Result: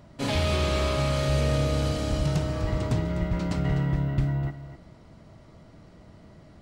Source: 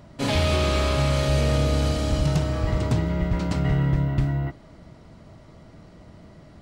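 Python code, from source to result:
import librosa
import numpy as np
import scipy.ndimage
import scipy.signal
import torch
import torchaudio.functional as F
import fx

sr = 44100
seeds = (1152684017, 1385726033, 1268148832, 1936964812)

y = x + 10.0 ** (-12.5 / 20.0) * np.pad(x, (int(251 * sr / 1000.0), 0))[:len(x)]
y = F.gain(torch.from_numpy(y), -3.5).numpy()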